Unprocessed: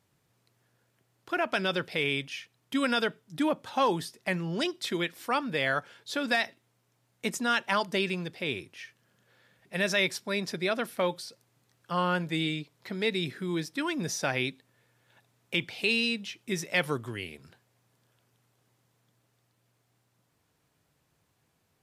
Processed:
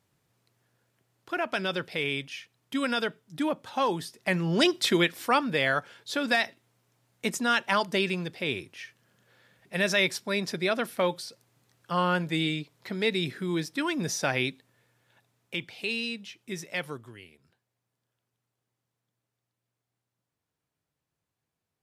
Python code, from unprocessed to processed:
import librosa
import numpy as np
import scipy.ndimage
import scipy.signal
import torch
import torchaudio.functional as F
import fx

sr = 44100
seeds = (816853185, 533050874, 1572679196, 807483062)

y = fx.gain(x, sr, db=fx.line((4.0, -1.0), (4.74, 9.0), (5.73, 2.0), (14.46, 2.0), (15.63, -4.5), (16.7, -4.5), (17.35, -13.0)))